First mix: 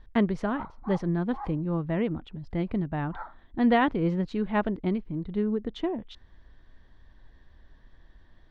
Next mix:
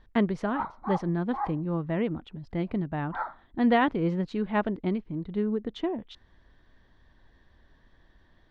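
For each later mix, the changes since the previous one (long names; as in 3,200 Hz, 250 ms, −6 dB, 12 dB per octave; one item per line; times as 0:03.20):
background +7.5 dB
master: add low-shelf EQ 69 Hz −9 dB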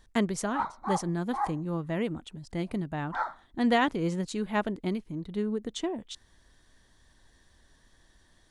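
speech −3.0 dB
master: remove high-frequency loss of the air 320 metres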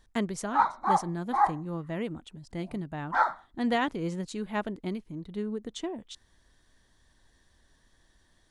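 speech −3.0 dB
background +7.0 dB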